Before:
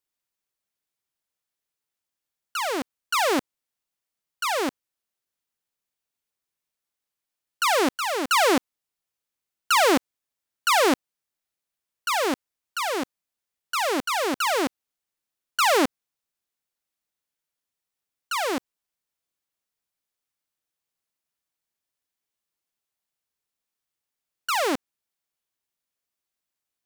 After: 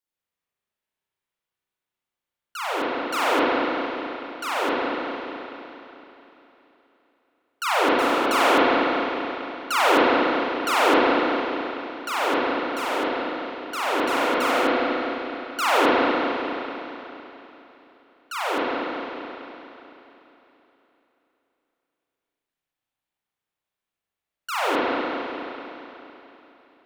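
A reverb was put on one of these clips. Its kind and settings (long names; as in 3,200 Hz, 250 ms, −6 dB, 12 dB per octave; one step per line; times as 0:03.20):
spring reverb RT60 3.4 s, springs 32/42 ms, chirp 55 ms, DRR −9 dB
level −6 dB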